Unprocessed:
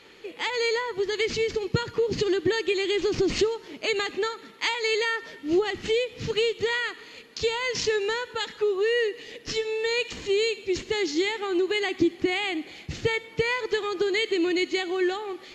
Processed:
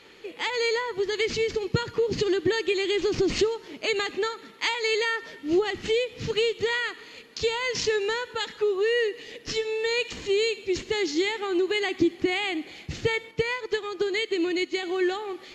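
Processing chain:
0:13.31–0:14.83: expander for the loud parts 1.5 to 1, over −35 dBFS

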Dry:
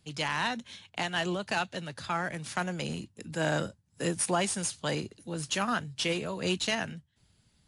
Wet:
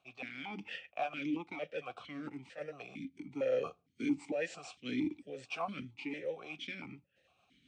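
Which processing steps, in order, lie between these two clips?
pitch shift by two crossfaded delay taps −3 semitones
reversed playback
downward compressor 6 to 1, threshold −41 dBFS, peak gain reduction 15 dB
reversed playback
on a send at −23.5 dB: convolution reverb RT60 0.40 s, pre-delay 4 ms
on the sum: sample-and-hold tremolo 3.5 Hz
formant filter that steps through the vowels 4.4 Hz
level +18 dB

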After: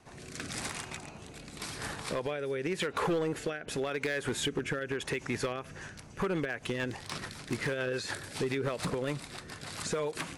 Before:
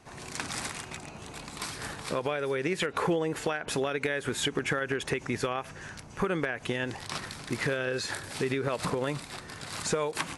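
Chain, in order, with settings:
rotating-speaker cabinet horn 0.9 Hz, later 7 Hz, at 0:05.40
hard clipping −25.5 dBFS, distortion −15 dB

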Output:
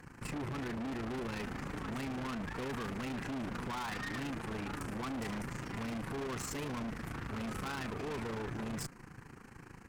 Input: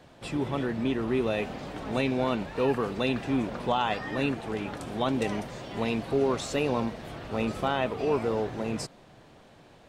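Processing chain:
phaser with its sweep stopped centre 1,500 Hz, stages 4
amplitude modulation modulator 27 Hz, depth 65%
tube saturation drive 48 dB, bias 0.6
level +11 dB

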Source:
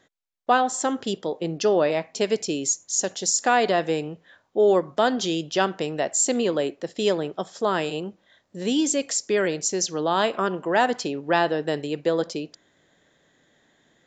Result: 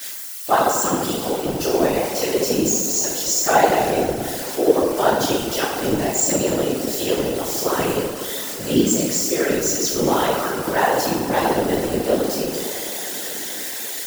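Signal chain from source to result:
spike at every zero crossing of −19.5 dBFS
on a send: tape delay 236 ms, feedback 86%, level −14.5 dB, low-pass 4,200 Hz
on the sum: feedback delay network reverb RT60 1.2 s, low-frequency decay 0.85×, high-frequency decay 0.65×, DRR −8 dB
random phases in short frames
level −6.5 dB

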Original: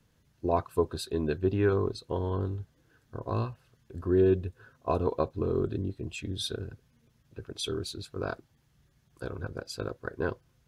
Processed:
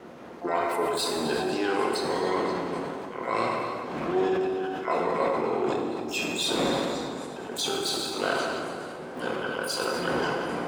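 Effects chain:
wind on the microphone 270 Hz −35 dBFS
meter weighting curve A
noise gate with hold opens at −50 dBFS
parametric band 100 Hz −11.5 dB 0.59 octaves
in parallel at −1.5 dB: compressor whose output falls as the input rises −36 dBFS, ratio −0.5
on the sum: mains-hum notches 50/100 Hz
pitch-shifted copies added +12 semitones −9 dB
echo through a band-pass that steps 265 ms, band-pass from 3,300 Hz, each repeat 0.7 octaves, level −11 dB
dense smooth reverb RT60 2.5 s, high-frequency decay 0.7×, DRR −0.5 dB
level that may fall only so fast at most 22 dB per second

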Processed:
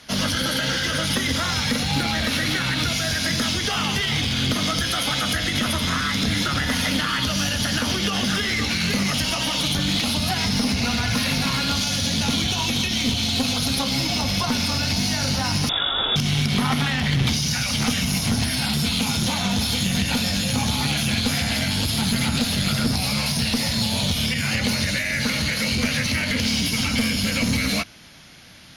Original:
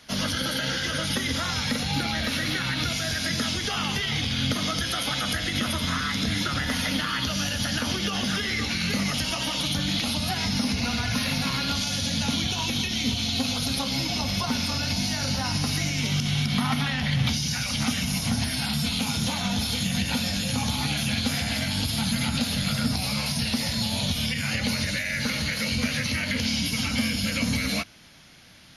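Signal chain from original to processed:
asymmetric clip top −25 dBFS
0:15.69–0:16.16: voice inversion scrambler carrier 3,600 Hz
level +5 dB

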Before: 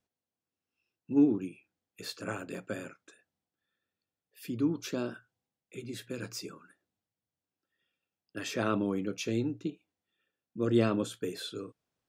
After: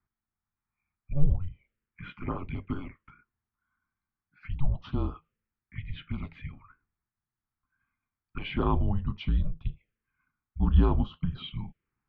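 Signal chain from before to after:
single-sideband voice off tune −280 Hz 160–3,300 Hz
phaser swept by the level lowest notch 510 Hz, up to 2,200 Hz, full sweep at −33 dBFS
level +6 dB

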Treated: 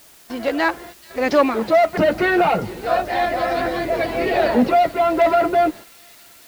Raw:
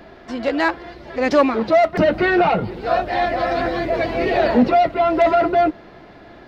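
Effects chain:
low-shelf EQ 210 Hz −4.5 dB
noise gate −34 dBFS, range −18 dB
bit-depth reduction 8 bits, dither triangular
on a send: delay with a high-pass on its return 435 ms, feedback 78%, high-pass 4,800 Hz, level −11 dB

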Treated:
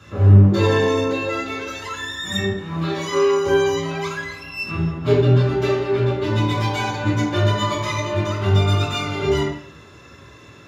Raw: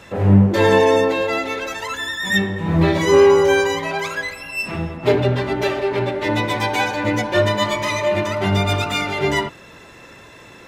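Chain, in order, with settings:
0:02.52–0:03.46: high-pass filter 750 Hz 6 dB per octave
convolution reverb RT60 0.55 s, pre-delay 3 ms, DRR −1.5 dB
level −12 dB

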